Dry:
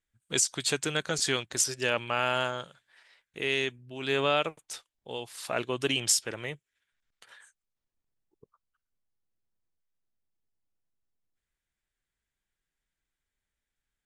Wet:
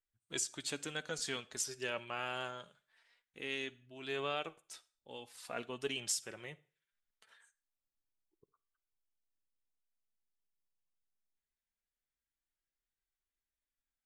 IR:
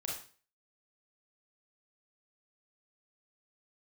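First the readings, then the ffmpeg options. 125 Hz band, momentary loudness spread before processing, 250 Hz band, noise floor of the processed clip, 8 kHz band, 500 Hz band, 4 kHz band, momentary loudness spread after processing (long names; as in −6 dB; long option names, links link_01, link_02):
−13.5 dB, 14 LU, −11.0 dB, below −85 dBFS, −11.0 dB, −11.5 dB, −11.0 dB, 14 LU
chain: -filter_complex "[0:a]flanger=delay=2.5:depth=3.1:regen=53:speed=0.23:shape=triangular,asplit=2[link_01][link_02];[1:a]atrim=start_sample=2205,adelay=12[link_03];[link_02][link_03]afir=irnorm=-1:irlink=0,volume=-19.5dB[link_04];[link_01][link_04]amix=inputs=2:normalize=0,volume=-7dB"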